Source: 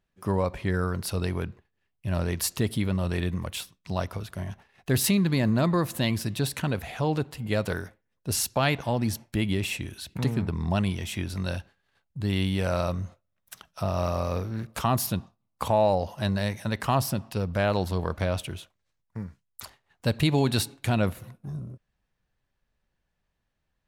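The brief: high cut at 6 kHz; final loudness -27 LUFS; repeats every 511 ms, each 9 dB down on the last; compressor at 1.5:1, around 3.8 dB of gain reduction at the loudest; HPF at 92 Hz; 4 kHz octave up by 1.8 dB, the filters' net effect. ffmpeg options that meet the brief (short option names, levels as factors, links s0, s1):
-af "highpass=92,lowpass=6000,equalizer=f=4000:t=o:g=3,acompressor=threshold=0.0355:ratio=1.5,aecho=1:1:511|1022|1533|2044:0.355|0.124|0.0435|0.0152,volume=1.68"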